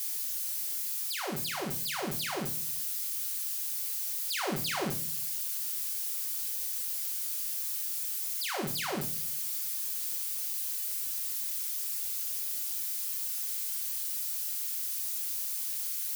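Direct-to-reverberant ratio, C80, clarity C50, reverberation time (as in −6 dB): 1.5 dB, 18.5 dB, 11.5 dB, non-exponential decay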